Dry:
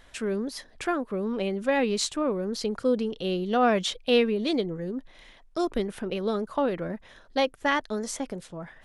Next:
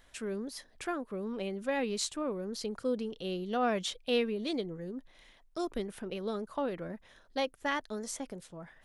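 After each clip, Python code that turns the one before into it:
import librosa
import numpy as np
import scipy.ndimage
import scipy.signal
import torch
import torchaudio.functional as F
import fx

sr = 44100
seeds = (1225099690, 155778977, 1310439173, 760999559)

y = fx.high_shelf(x, sr, hz=8100.0, db=7.5)
y = y * 10.0 ** (-8.0 / 20.0)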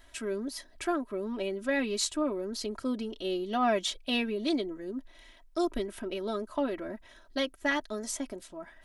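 y = x + 0.82 * np.pad(x, (int(3.1 * sr / 1000.0), 0))[:len(x)]
y = y * 10.0 ** (1.5 / 20.0)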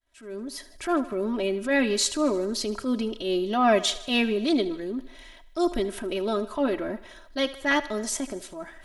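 y = fx.fade_in_head(x, sr, length_s=0.94)
y = fx.echo_thinned(y, sr, ms=77, feedback_pct=61, hz=280.0, wet_db=-17.0)
y = fx.transient(y, sr, attack_db=-7, sustain_db=0)
y = y * 10.0 ** (7.5 / 20.0)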